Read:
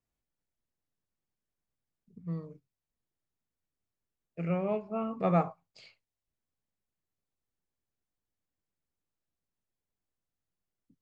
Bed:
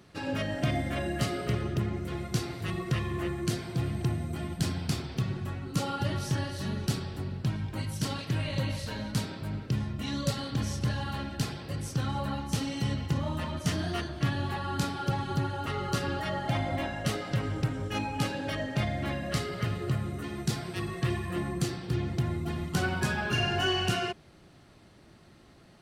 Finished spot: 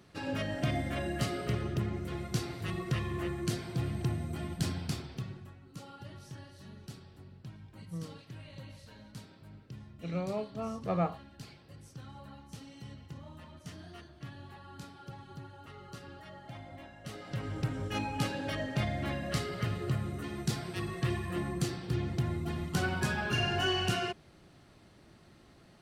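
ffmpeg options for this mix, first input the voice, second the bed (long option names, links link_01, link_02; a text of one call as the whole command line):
ffmpeg -i stem1.wav -i stem2.wav -filter_complex "[0:a]adelay=5650,volume=-4dB[link_01];[1:a]volume=11.5dB,afade=type=out:start_time=4.69:duration=0.85:silence=0.199526,afade=type=in:start_time=17.01:duration=0.78:silence=0.188365[link_02];[link_01][link_02]amix=inputs=2:normalize=0" out.wav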